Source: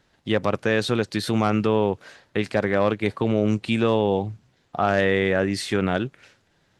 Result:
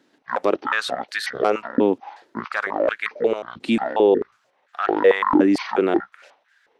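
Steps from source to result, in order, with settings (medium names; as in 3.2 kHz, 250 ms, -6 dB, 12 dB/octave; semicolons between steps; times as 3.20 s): pitch shift switched off and on -11 st, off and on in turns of 180 ms; step-sequenced high-pass 4.5 Hz 280–1600 Hz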